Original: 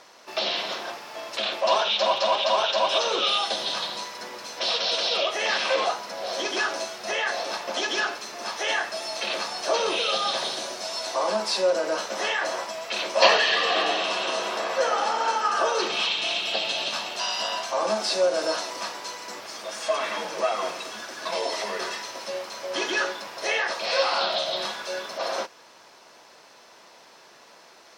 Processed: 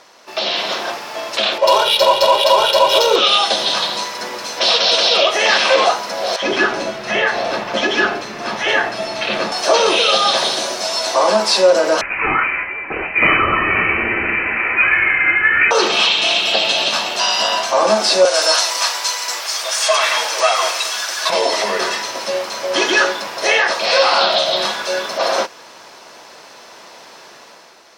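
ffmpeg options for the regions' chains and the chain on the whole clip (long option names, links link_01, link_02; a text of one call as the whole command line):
ffmpeg -i in.wav -filter_complex "[0:a]asettb=1/sr,asplit=3[link_01][link_02][link_03];[link_01]atrim=end=1.584[link_04];[link_02]atrim=start=1.58:end=3.16,asetpts=PTS-STARTPTS,afade=type=in:duration=0.004:curve=qsin,afade=type=out:start_time=1.576:duration=0.004:curve=qsin,equalizer=frequency=1700:width=0.75:gain=-6,aecho=1:1:2.1:0.91,atrim=end_sample=69678,adynamicsmooth=sensitivity=4:basefreq=3200[link_05];[link_03]atrim=start=3.156[link_06];[link_04][link_05]acrossfade=duration=0.004:curve1=hsin:curve2=qsin[link_07];[link_07][link_06]acrossfade=duration=0.004:curve1=qsin:curve2=hsin,asettb=1/sr,asplit=3[link_08][link_09][link_10];[link_08]atrim=end=6.364[link_11];[link_09]atrim=start=6.36:end=9.52,asetpts=PTS-STARTPTS,afade=type=in:duration=0.004:curve=qsin,afade=type=out:start_time=3.156:duration=0.004:curve=qsin,bass=frequency=250:gain=11,treble=frequency=4000:gain=-12,acrossover=split=880[link_12][link_13];[link_12]adelay=60[link_14];[link_14][link_13]amix=inputs=2:normalize=0,atrim=end_sample=139356[link_15];[link_10]atrim=start=9.516[link_16];[link_11][link_15]acrossfade=duration=0.004:curve1=hsin:curve2=qsin[link_17];[link_17][link_16]acrossfade=duration=0.004:curve1=qsin:curve2=hsin,asettb=1/sr,asplit=3[link_18][link_19][link_20];[link_18]atrim=end=12.014[link_21];[link_19]atrim=start=12.01:end=15.71,asetpts=PTS-STARTPTS,afade=type=in:duration=0.004:curve=qsin,afade=type=out:start_time=3.696:duration=0.004:curve=qsin,aemphasis=mode=production:type=bsi,aeval=exprs='(tanh(2*val(0)+0.35)-tanh(0.35))/2':channel_layout=same,lowpass=frequency=2600:width_type=q:width=0.5098,lowpass=frequency=2600:width_type=q:width=0.6013,lowpass=frequency=2600:width_type=q:width=0.9,lowpass=frequency=2600:width_type=q:width=2.563,afreqshift=-3000[link_22];[link_20]atrim=start=15.706[link_23];[link_21][link_22]acrossfade=duration=0.004:curve1=hsin:curve2=qsin[link_24];[link_24][link_23]acrossfade=duration=0.004:curve1=qsin:curve2=hsin,asettb=1/sr,asplit=3[link_25][link_26][link_27];[link_25]atrim=end=18.254[link_28];[link_26]atrim=start=18.25:end=21.3,asetpts=PTS-STARTPTS,afade=type=in:duration=0.004:curve=qsin,afade=type=out:start_time=3.046:duration=0.004:curve=qsin,highpass=680,highshelf=frequency=2900:gain=8.5[link_29];[link_27]atrim=start=21.296[link_30];[link_28][link_29]acrossfade=duration=0.004:curve1=hsin:curve2=qsin[link_31];[link_31][link_30]acrossfade=duration=0.004:curve1=qsin:curve2=hsin,dynaudnorm=framelen=110:gausssize=11:maxgain=7dB,alimiter=level_in=5.5dB:limit=-1dB:release=50:level=0:latency=1,volume=-1dB" out.wav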